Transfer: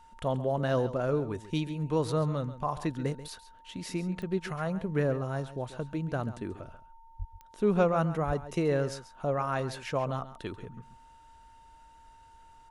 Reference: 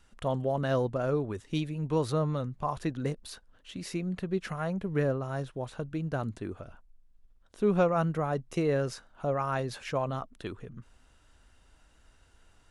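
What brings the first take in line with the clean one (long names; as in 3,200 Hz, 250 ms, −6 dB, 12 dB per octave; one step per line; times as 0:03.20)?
click removal
notch filter 910 Hz, Q 30
0:07.18–0:07.30: high-pass filter 140 Hz 24 dB per octave
0:08.26–0:08.38: high-pass filter 140 Hz 24 dB per octave
echo removal 136 ms −14 dB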